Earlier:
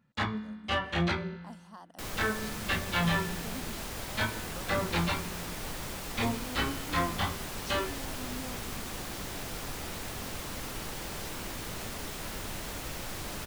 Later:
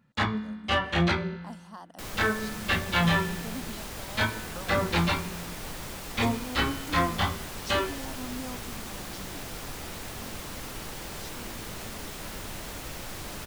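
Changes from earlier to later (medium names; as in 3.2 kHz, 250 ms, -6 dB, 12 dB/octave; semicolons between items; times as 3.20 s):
speech +4.5 dB; first sound +4.5 dB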